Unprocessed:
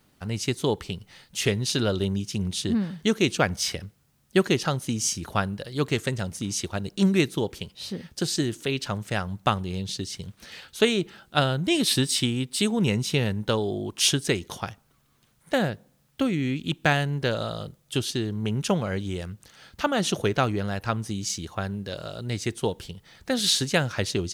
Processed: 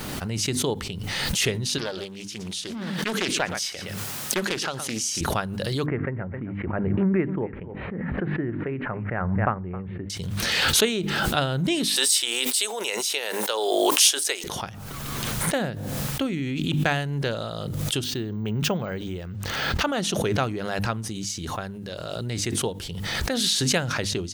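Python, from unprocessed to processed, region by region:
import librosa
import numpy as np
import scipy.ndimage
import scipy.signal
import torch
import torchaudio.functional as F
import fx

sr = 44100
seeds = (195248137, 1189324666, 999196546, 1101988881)

y = fx.chain(x, sr, fx.highpass(hz=610.0, slope=6),
    fx.echo_single(ms=118, db=-17.5),
    fx.doppler_dist(depth_ms=0.46), at=(1.78, 5.21))
y = fx.chain(y, sr, fx.steep_lowpass(hz=2100.0, slope=48),
    fx.echo_single(ms=265, db=-17.5), at=(5.86, 10.1))
y = fx.chain(y, sr, fx.highpass(hz=490.0, slope=24),
    fx.high_shelf(hz=5400.0, db=11.5), at=(11.96, 14.44))
y = fx.chain(y, sr, fx.lowpass(hz=3100.0, slope=6),
    fx.resample_bad(factor=2, down='filtered', up='hold'), at=(18.04, 19.81))
y = fx.hum_notches(y, sr, base_hz=50, count=6)
y = fx.pre_swell(y, sr, db_per_s=22.0)
y = F.gain(torch.from_numpy(y), -2.0).numpy()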